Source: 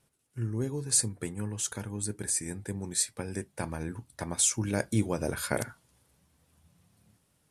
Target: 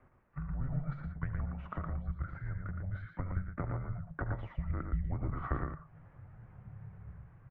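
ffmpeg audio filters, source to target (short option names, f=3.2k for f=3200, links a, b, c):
-filter_complex "[0:a]asubboost=boost=7.5:cutoff=170,acompressor=threshold=-41dB:ratio=5,asettb=1/sr,asplit=3[a][b][c];[a]atrim=end=2.344[d];[b]atrim=start=2.34:end=2.84,asetpts=PTS-STARTPTS,afade=t=in:d=0.004:c=qsin,afade=t=out:st=0.496:d=0.004:c=qsin,aeval=exprs='(tanh(39.8*val(0)+0.2)-tanh(0.2))/39.8':c=same[e];[c]atrim=start=2.836[f];[d][e]acrossfade=d=0.004:c1=hsin:c2=qsin[g];[g][f]acrossfade=d=0.004:c1=qsin:c2=hsin,aecho=1:1:73|84|116:0.178|0.141|0.562,highpass=f=170:t=q:w=0.5412,highpass=f=170:t=q:w=1.307,lowpass=f=2.1k:t=q:w=0.5176,lowpass=f=2.1k:t=q:w=0.7071,lowpass=f=2.1k:t=q:w=1.932,afreqshift=-280,volume=12dB"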